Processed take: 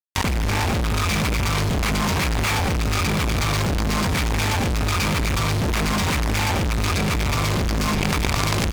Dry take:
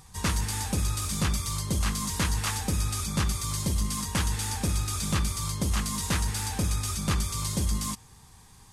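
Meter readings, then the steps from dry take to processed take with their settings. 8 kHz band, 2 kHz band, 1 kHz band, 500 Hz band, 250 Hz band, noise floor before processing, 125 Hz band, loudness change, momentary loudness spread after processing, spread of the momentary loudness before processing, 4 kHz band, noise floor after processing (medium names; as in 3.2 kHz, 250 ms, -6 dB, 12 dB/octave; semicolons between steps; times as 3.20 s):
+0.5 dB, +13.0 dB, +11.0 dB, +14.0 dB, +8.5 dB, -53 dBFS, +7.0 dB, +7.0 dB, 1 LU, 2 LU, +8.0 dB, -21 dBFS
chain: peaking EQ 2.3 kHz +13.5 dB 0.21 oct; hum notches 50/100/150/200/250/300 Hz; level rider gain up to 15 dB; in parallel at -6 dB: Schmitt trigger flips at -21 dBFS; on the sum: boxcar filter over 5 samples; fuzz box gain 36 dB, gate -33 dBFS; on a send: delay 1025 ms -22 dB; on the sum: level flattener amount 100%; trim -8 dB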